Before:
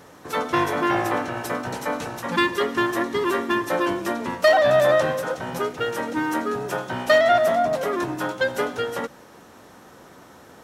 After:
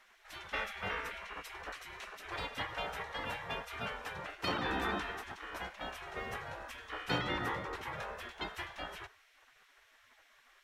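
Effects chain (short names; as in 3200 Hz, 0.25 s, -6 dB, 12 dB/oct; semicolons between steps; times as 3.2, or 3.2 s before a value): tone controls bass +12 dB, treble -14 dB; spectral gate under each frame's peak -20 dB weak; gain -4.5 dB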